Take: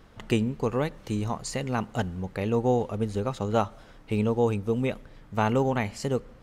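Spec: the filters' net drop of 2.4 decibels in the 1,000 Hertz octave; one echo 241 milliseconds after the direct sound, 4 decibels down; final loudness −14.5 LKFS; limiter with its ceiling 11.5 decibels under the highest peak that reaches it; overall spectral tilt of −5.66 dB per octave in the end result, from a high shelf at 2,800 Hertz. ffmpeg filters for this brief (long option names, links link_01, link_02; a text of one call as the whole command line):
ffmpeg -i in.wav -af "equalizer=frequency=1000:width_type=o:gain=-4,highshelf=frequency=2800:gain=6,alimiter=limit=-20.5dB:level=0:latency=1,aecho=1:1:241:0.631,volume=15.5dB" out.wav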